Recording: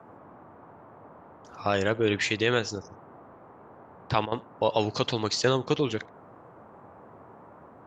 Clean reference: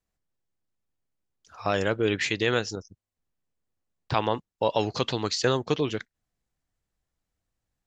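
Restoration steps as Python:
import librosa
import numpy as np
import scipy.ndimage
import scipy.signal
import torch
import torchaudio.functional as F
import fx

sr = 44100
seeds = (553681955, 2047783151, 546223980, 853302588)

y = fx.fix_interpolate(x, sr, at_s=(4.26,), length_ms=58.0)
y = fx.noise_reduce(y, sr, print_start_s=6.06, print_end_s=6.56, reduce_db=30.0)
y = fx.fix_echo_inverse(y, sr, delay_ms=76, level_db=-24.0)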